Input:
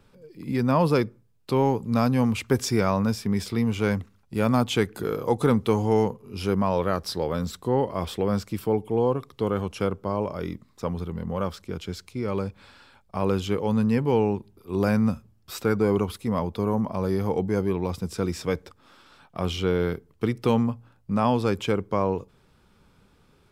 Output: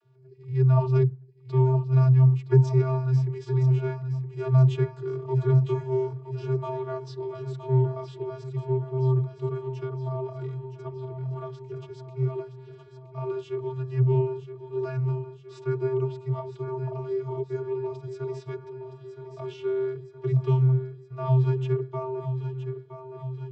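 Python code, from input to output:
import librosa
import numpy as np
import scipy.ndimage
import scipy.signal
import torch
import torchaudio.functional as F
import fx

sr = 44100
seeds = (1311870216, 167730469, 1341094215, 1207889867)

p1 = fx.transient(x, sr, attack_db=4, sustain_db=-8, at=(1.55, 2.7))
p2 = fx.vocoder(p1, sr, bands=32, carrier='square', carrier_hz=130.0)
y = p2 + fx.echo_feedback(p2, sr, ms=968, feedback_pct=60, wet_db=-10, dry=0)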